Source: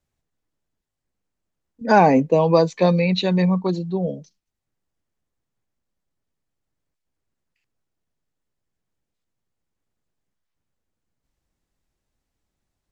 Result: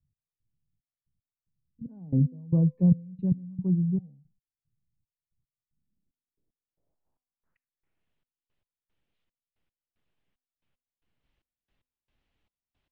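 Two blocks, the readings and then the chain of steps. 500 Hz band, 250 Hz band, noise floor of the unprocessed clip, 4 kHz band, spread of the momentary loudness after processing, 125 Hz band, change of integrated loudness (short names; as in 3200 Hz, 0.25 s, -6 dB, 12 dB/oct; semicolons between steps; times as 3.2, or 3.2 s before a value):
-24.0 dB, -6.0 dB, -82 dBFS, under -40 dB, 16 LU, -2.0 dB, -8.0 dB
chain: step gate "x..xxx.." 113 bpm -24 dB; low-pass sweep 140 Hz -> 3000 Hz, 5.6–8.11; de-hum 255 Hz, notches 4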